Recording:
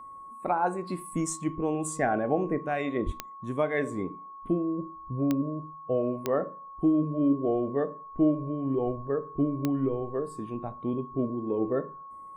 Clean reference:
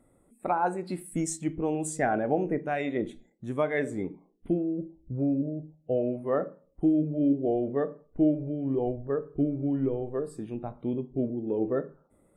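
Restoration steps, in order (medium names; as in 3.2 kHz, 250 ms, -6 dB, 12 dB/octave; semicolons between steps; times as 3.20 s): de-click; band-stop 1.1 kHz, Q 30; 3.05–3.17 s: high-pass 140 Hz 24 dB/octave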